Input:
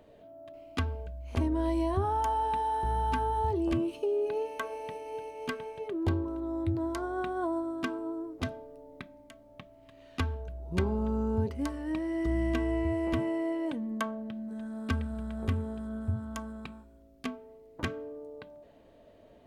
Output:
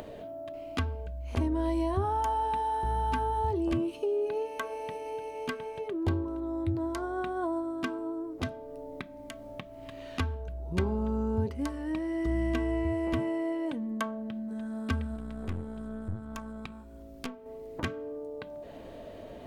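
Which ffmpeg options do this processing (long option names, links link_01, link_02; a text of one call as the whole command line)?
ffmpeg -i in.wav -filter_complex "[0:a]asettb=1/sr,asplit=3[link_01][link_02][link_03];[link_01]atrim=end=15.164[link_04];[link_02]atrim=start=15.16:end=17.46,asetpts=PTS-STARTPTS,afade=type=in:duration=0.004:curve=qsin,afade=type=out:start_time=2.296:duration=0.004:curve=qsin,aeval=exprs='(tanh(28.2*val(0)+0.8)-tanh(0.8))/28.2':channel_layout=same[link_05];[link_03]atrim=start=17.456[link_06];[link_04][link_05]acrossfade=duration=0.004:curve1=hsin:curve2=qsin[link_07];[link_07][link_06]acrossfade=duration=0.004:curve1=qsin:curve2=hsin,acompressor=mode=upward:threshold=-32dB:ratio=2.5" out.wav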